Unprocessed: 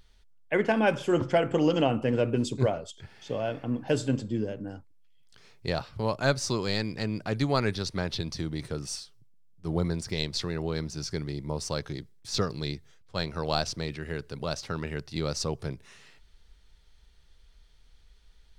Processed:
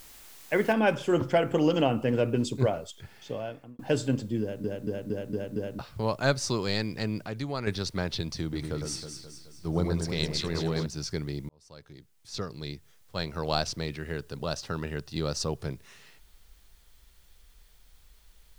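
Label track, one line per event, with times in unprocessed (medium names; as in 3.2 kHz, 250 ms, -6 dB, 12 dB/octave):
0.730000	0.730000	noise floor step -51 dB -66 dB
3.160000	3.790000	fade out
4.410000	4.410000	stutter in place 0.23 s, 6 plays
7.210000	7.670000	compression 1.5:1, threshold -41 dBFS
8.420000	10.860000	echo whose repeats swap between lows and highs 106 ms, split 1.8 kHz, feedback 70%, level -4.5 dB
11.490000	13.540000	fade in
14.150000	15.600000	band-stop 2.2 kHz, Q 8.1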